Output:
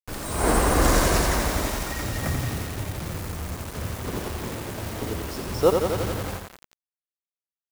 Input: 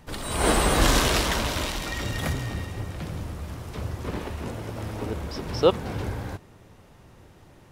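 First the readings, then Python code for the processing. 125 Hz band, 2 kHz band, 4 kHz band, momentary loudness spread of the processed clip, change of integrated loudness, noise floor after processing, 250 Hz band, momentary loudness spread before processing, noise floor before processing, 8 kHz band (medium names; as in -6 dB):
+1.5 dB, 0.0 dB, -3.5 dB, 13 LU, +1.0 dB, under -85 dBFS, +1.5 dB, 14 LU, -52 dBFS, +1.5 dB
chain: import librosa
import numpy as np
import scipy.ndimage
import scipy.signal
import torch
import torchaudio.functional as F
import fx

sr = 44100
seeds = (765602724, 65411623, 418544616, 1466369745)

y = fx.peak_eq(x, sr, hz=3300.0, db=-11.0, octaves=0.88)
y = fx.mod_noise(y, sr, seeds[0], snr_db=24)
y = fx.quant_dither(y, sr, seeds[1], bits=6, dither='none')
y = fx.echo_crushed(y, sr, ms=87, feedback_pct=80, bits=6, wet_db=-5.0)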